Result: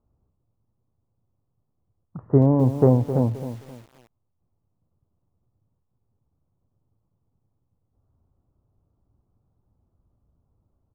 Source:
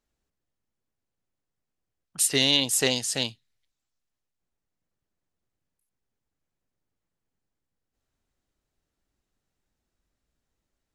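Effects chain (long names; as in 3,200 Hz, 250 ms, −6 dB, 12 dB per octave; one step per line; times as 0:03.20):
Butterworth low-pass 1,200 Hz 48 dB per octave
parametric band 100 Hz +14.5 dB 1.4 octaves
on a send: single-tap delay 104 ms −23 dB
on the sum: feedback echo at a low word length 263 ms, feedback 35%, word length 8 bits, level −11 dB
level +7.5 dB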